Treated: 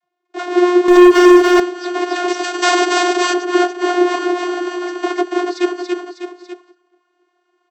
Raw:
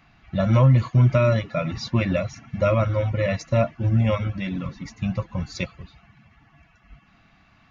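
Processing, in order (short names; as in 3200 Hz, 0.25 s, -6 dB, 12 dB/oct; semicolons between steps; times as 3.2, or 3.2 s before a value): half-waves squared off; feedback echo 0.284 s, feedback 16%, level -4 dB; gate with hold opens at -26 dBFS; vocoder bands 32, saw 356 Hz; AGC gain up to 9.5 dB; echo 0.599 s -11 dB; 0.88–1.6 sample leveller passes 3; 2.28–3.34 high shelf 3500 Hz +11 dB; gain -1 dB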